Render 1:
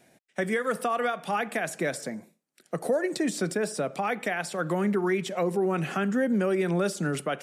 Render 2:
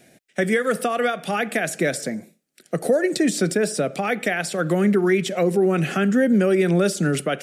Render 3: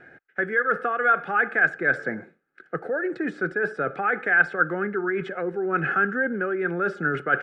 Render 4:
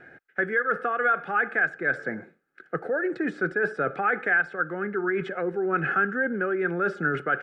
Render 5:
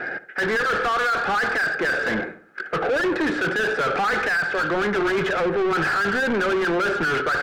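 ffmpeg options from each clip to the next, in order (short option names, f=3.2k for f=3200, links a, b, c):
-af "equalizer=f=980:t=o:w=0.6:g=-11.5,volume=8dB"
-af "aecho=1:1:2.4:0.48,areverse,acompressor=threshold=-26dB:ratio=6,areverse,lowpass=f=1.5k:t=q:w=10"
-af "alimiter=limit=-13.5dB:level=0:latency=1:release=472"
-filter_complex "[0:a]asplit=2[a][b];[b]highpass=f=720:p=1,volume=32dB,asoftclip=type=tanh:threshold=-13dB[c];[a][c]amix=inputs=2:normalize=0,lowpass=f=1.7k:p=1,volume=-6dB,asplit=2[d][e];[e]adelay=70,lowpass=f=1.8k:p=1,volume=-14.5dB,asplit=2[f][g];[g]adelay=70,lowpass=f=1.8k:p=1,volume=0.48,asplit=2[h][i];[i]adelay=70,lowpass=f=1.8k:p=1,volume=0.48,asplit=2[j][k];[k]adelay=70,lowpass=f=1.8k:p=1,volume=0.48[l];[d][f][h][j][l]amix=inputs=5:normalize=0,asoftclip=type=tanh:threshold=-15dB"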